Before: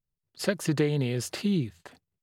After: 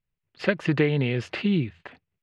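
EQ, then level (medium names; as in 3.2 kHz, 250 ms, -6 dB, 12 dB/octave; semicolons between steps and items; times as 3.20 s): resonant low-pass 2.5 kHz, resonance Q 2; +3.0 dB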